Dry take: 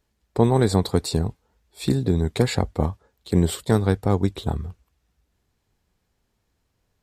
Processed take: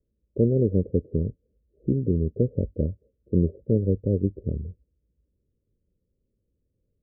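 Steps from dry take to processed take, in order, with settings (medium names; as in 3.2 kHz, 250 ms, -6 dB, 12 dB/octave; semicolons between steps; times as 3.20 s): steep low-pass 580 Hz 96 dB/octave; trim -2.5 dB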